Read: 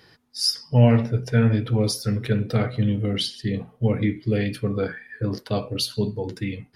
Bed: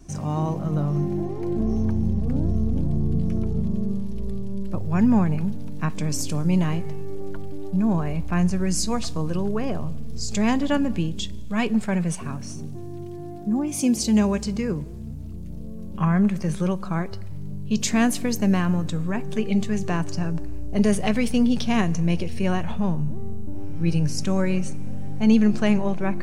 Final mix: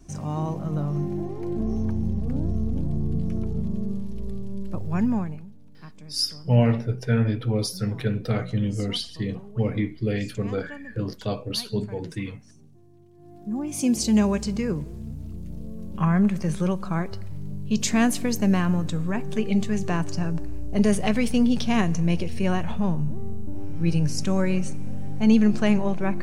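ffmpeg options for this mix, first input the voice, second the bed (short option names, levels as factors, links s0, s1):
-filter_complex "[0:a]adelay=5750,volume=0.708[s0];[1:a]volume=5.96,afade=t=out:st=4.95:d=0.51:silence=0.158489,afade=t=in:st=13.14:d=0.83:silence=0.11885[s1];[s0][s1]amix=inputs=2:normalize=0"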